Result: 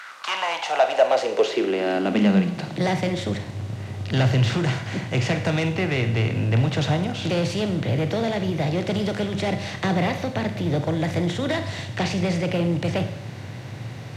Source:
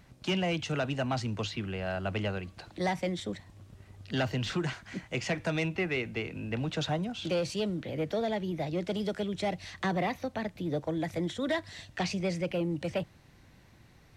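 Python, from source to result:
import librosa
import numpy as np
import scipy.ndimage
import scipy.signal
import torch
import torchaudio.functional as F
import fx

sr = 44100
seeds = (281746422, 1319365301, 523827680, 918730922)

y = fx.bin_compress(x, sr, power=0.6)
y = fx.filter_sweep_highpass(y, sr, from_hz=1400.0, to_hz=110.0, start_s=0.02, end_s=3.06, q=6.0)
y = fx.rev_schroeder(y, sr, rt60_s=0.69, comb_ms=31, drr_db=8.0)
y = y * librosa.db_to_amplitude(2.0)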